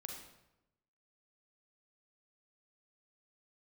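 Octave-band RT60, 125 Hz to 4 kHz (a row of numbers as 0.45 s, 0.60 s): 1.1 s, 1.0 s, 0.95 s, 0.90 s, 0.75 s, 0.65 s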